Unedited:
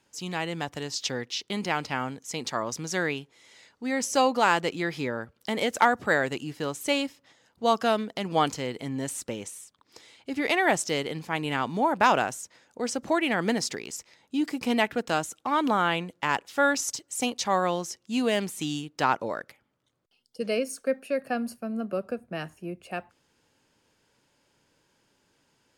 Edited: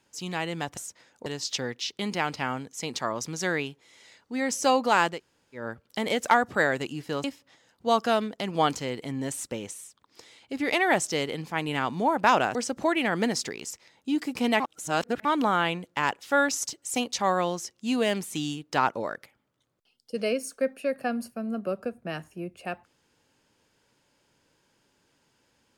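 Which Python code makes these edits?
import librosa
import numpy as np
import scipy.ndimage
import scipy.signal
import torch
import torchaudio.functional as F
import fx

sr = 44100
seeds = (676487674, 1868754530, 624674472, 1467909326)

y = fx.edit(x, sr, fx.room_tone_fill(start_s=4.65, length_s=0.46, crossfade_s=0.16),
    fx.cut(start_s=6.75, length_s=0.26),
    fx.move(start_s=12.32, length_s=0.49, to_s=0.77),
    fx.reverse_span(start_s=14.86, length_s=0.65), tone=tone)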